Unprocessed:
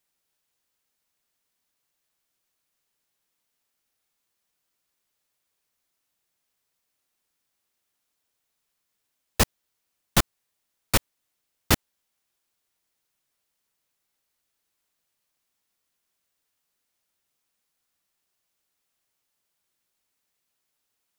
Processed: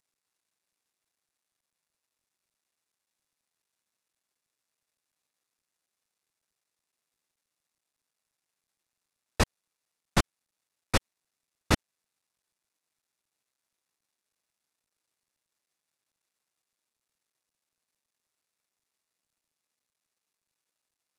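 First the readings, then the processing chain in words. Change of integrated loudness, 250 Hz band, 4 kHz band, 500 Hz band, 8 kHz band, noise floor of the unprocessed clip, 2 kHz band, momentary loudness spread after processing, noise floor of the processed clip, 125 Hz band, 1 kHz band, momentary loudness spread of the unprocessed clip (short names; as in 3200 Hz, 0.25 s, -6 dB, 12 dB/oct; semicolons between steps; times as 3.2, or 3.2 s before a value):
-5.0 dB, -2.5 dB, -6.0 dB, -2.0 dB, -8.5 dB, -79 dBFS, -3.5 dB, 4 LU, under -85 dBFS, -2.5 dB, -2.5 dB, 3 LU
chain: CVSD 64 kbps; notch 3100 Hz, Q 16; gain -2 dB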